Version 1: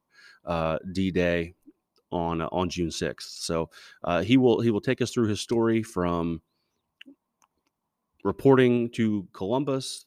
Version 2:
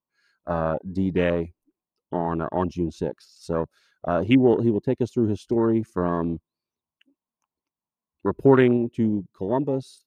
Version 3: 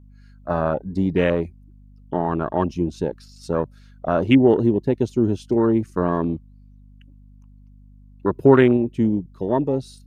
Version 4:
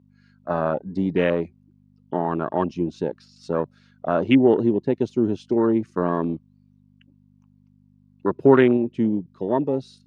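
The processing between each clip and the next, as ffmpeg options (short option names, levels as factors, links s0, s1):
-af "afwtdn=0.0355,volume=1.33"
-af "aeval=exprs='val(0)+0.00355*(sin(2*PI*50*n/s)+sin(2*PI*2*50*n/s)/2+sin(2*PI*3*50*n/s)/3+sin(2*PI*4*50*n/s)/4+sin(2*PI*5*50*n/s)/5)':c=same,volume=1.41"
-af "highpass=150,lowpass=5100,volume=0.891"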